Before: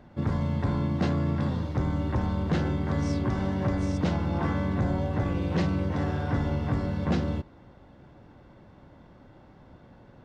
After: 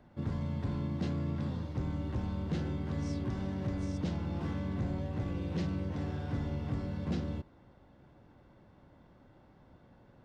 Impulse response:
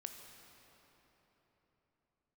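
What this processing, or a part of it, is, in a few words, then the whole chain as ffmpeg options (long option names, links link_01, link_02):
one-band saturation: -filter_complex "[0:a]acrossover=split=470|2600[link_01][link_02][link_03];[link_02]asoftclip=type=tanh:threshold=-40dB[link_04];[link_01][link_04][link_03]amix=inputs=3:normalize=0,volume=-7.5dB"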